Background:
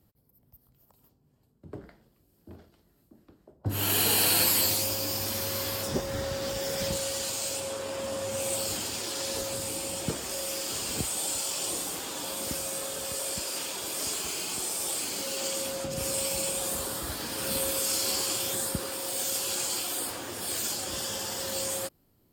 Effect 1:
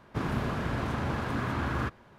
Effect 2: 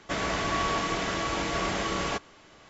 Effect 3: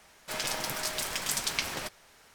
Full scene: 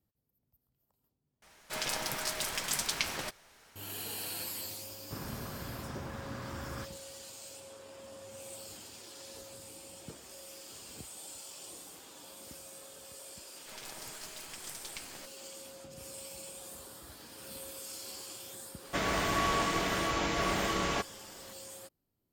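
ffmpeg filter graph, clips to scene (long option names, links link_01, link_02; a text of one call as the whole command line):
ffmpeg -i bed.wav -i cue0.wav -i cue1.wav -i cue2.wav -filter_complex "[3:a]asplit=2[link_01][link_02];[0:a]volume=-16dB[link_03];[link_02]aeval=exprs='if(lt(val(0),0),0.447*val(0),val(0))':channel_layout=same[link_04];[link_03]asplit=2[link_05][link_06];[link_05]atrim=end=1.424[link_07];[link_01]atrim=end=2.34,asetpts=PTS-STARTPTS,volume=-2dB[link_08];[link_06]atrim=start=3.756[link_09];[1:a]atrim=end=2.18,asetpts=PTS-STARTPTS,volume=-11.5dB,afade=type=in:duration=0.004:curve=hsin,afade=type=out:start_time=2.176:duration=0.004:curve=hsin,adelay=4960[link_10];[link_04]atrim=end=2.34,asetpts=PTS-STARTPTS,volume=-12.5dB,afade=type=in:duration=0.004:curve=hsin,afade=type=out:start_time=2.336:duration=0.004:curve=hsin,adelay=13380[link_11];[2:a]atrim=end=2.69,asetpts=PTS-STARTPTS,volume=-2dB,afade=type=in:duration=0.004:curve=hsin,afade=type=out:start_time=2.686:duration=0.004:curve=hsin,adelay=18840[link_12];[link_07][link_08]acrossfade=duration=0.004:curve1=hsin:curve2=hsin[link_13];[link_13][link_09]acrossfade=duration=0.004:curve1=hsin:curve2=hsin[link_14];[link_14][link_10][link_11][link_12]amix=inputs=4:normalize=0" out.wav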